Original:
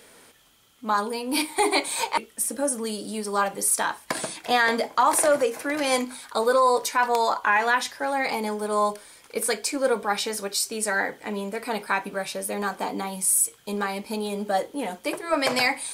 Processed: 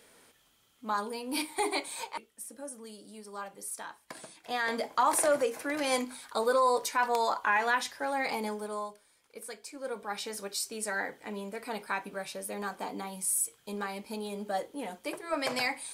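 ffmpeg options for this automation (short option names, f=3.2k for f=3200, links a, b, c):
-af "volume=12.5dB,afade=t=out:st=1.57:d=0.74:silence=0.354813,afade=t=in:st=4.38:d=0.56:silence=0.281838,afade=t=out:st=8.46:d=0.43:silence=0.251189,afade=t=in:st=9.71:d=0.71:silence=0.334965"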